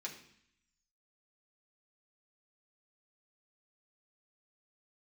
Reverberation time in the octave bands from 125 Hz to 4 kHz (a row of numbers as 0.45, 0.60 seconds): 0.95, 0.90, 0.60, 0.70, 0.85, 0.80 seconds